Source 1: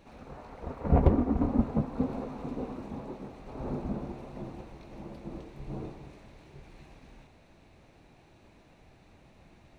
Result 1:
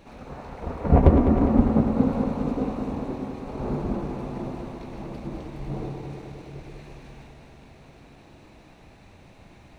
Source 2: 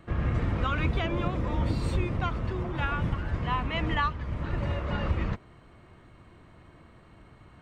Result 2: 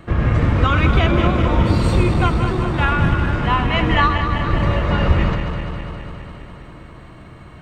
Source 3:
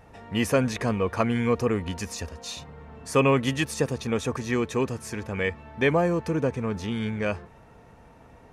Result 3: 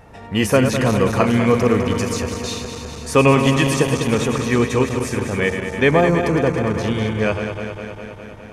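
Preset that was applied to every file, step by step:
backward echo that repeats 102 ms, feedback 84%, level -8 dB; peak normalisation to -1.5 dBFS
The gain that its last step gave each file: +6.0 dB, +11.0 dB, +7.0 dB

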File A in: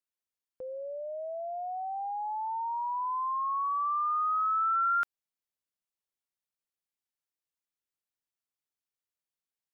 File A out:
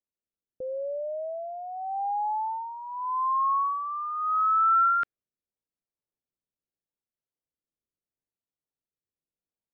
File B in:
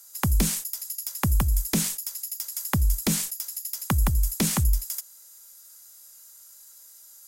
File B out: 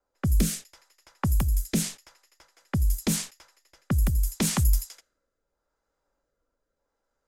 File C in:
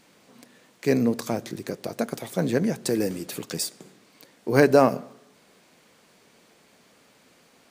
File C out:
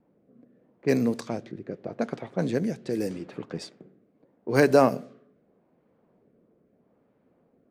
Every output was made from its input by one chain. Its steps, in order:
level-controlled noise filter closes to 620 Hz, open at -19 dBFS; rotary cabinet horn 0.8 Hz; normalise loudness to -27 LUFS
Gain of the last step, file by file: +7.5 dB, +1.5 dB, -1.0 dB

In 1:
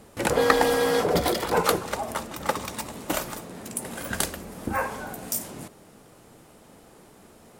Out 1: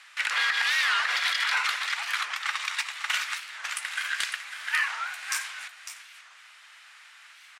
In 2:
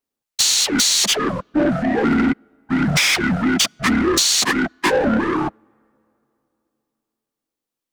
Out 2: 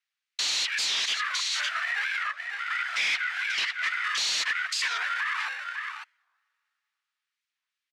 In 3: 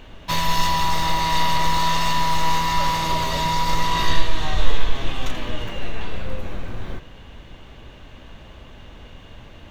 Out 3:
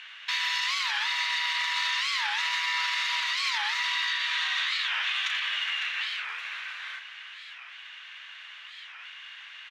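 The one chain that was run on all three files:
in parallel at -11 dB: sample-and-hold 27×; on the sum: high-pass 1.5 kHz 24 dB/octave; on a send: delay 552 ms -11.5 dB; on the sum: hard clipper -16.5 dBFS; low-pass 2.4 kHz 12 dB/octave; tilt EQ +3.5 dB/octave; compression, threshold -28 dBFS; peak limiter -26 dBFS; warped record 45 rpm, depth 250 cents; normalise loudness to -27 LUFS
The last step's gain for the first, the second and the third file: +10.5 dB, +6.0 dB, +6.5 dB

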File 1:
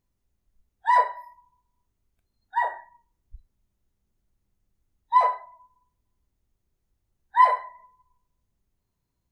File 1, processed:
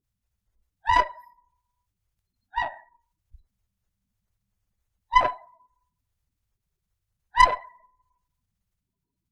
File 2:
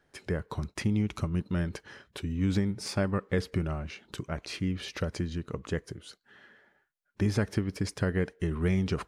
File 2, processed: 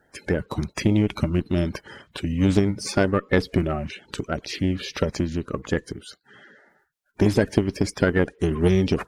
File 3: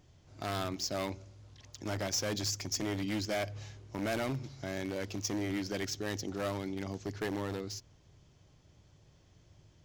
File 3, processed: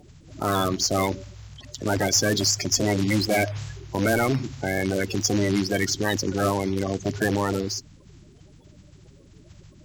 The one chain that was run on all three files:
coarse spectral quantiser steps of 30 dB; Chebyshev shaper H 2 -11 dB, 6 -19 dB, 7 -24 dB, 8 -25 dB, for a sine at -5.5 dBFS; normalise loudness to -24 LUFS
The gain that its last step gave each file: +0.5 dB, +12.0 dB, +18.0 dB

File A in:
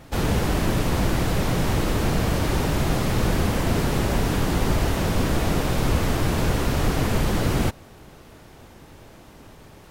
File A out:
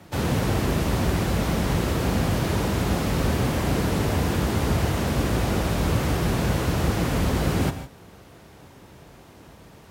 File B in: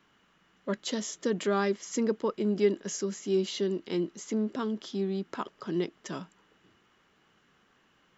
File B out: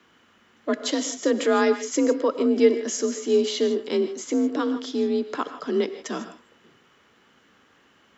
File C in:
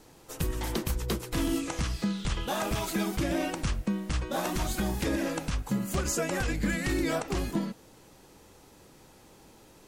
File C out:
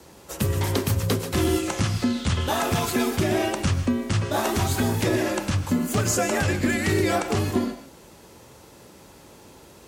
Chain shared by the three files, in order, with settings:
gated-style reverb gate 180 ms rising, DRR 10 dB; frequency shift +43 Hz; normalise loudness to -24 LUFS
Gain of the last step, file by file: -2.0 dB, +7.0 dB, +6.5 dB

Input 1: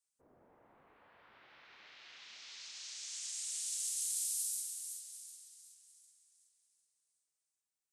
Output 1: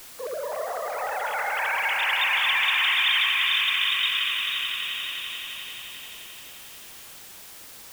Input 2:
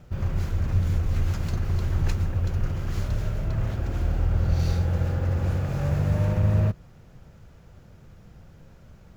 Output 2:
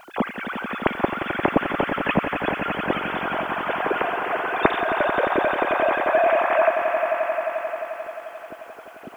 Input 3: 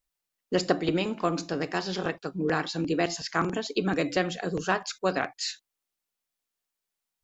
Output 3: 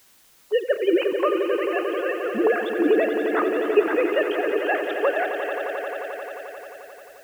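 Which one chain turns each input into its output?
formants replaced by sine waves; echo with a slow build-up 88 ms, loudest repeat 5, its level -10.5 dB; word length cut 10-bit, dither triangular; normalise loudness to -23 LUFS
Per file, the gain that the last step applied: +15.5 dB, -1.5 dB, +4.5 dB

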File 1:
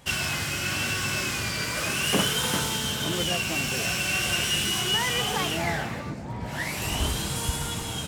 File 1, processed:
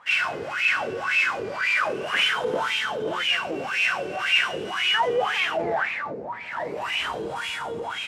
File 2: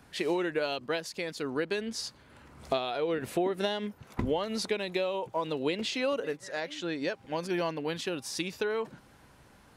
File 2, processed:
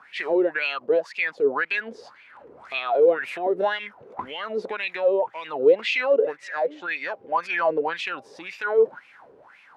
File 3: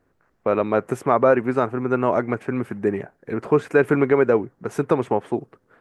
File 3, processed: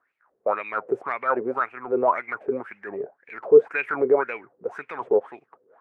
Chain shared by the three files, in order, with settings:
wah-wah 1.9 Hz 420–2500 Hz, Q 7.6; transient shaper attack -5 dB, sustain +1 dB; normalise loudness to -24 LUFS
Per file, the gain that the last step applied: +17.5 dB, +21.0 dB, +11.0 dB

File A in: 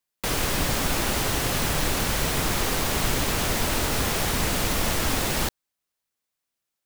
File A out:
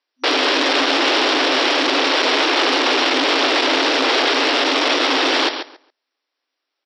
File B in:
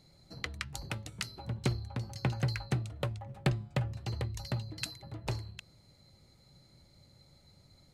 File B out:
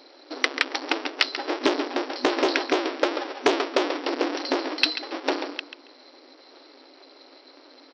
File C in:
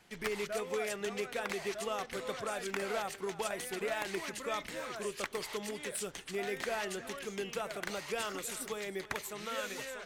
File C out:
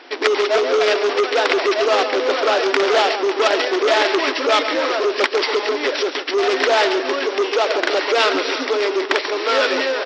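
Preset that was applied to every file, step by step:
square wave that keeps the level; on a send: feedback delay 138 ms, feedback 18%, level -10 dB; on the sum: FFT band-pass 250–5800 Hz; dynamic bell 3.3 kHz, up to +6 dB, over -41 dBFS, Q 1.3; transformer saturation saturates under 1.6 kHz; peak normalisation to -2 dBFS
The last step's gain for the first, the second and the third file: +6.5 dB, +12.5 dB, +18.5 dB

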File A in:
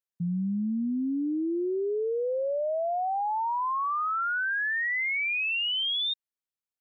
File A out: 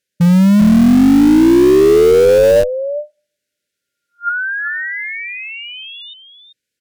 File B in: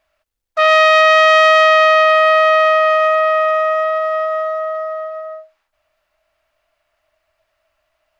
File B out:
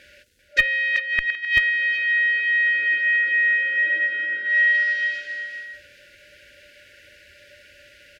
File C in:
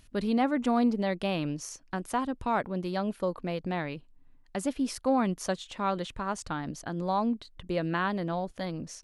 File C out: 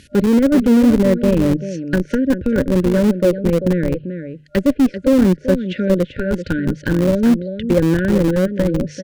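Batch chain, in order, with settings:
FFT band-reject 600–1400 Hz; treble shelf 9.9 kHz -10 dB; inverted gate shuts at -7 dBFS, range -24 dB; reverse; compression 16:1, threshold -27 dBFS; reverse; high-pass 75 Hz 12 dB/octave; hum notches 50/100/150 Hz; low-pass that closes with the level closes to 930 Hz, closed at -32 dBFS; delay 390 ms -9 dB; in parallel at -5.5 dB: Schmitt trigger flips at -30 dBFS; on the sum: peak normalisation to -3 dBFS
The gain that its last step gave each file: +19.5 dB, +22.5 dB, +17.0 dB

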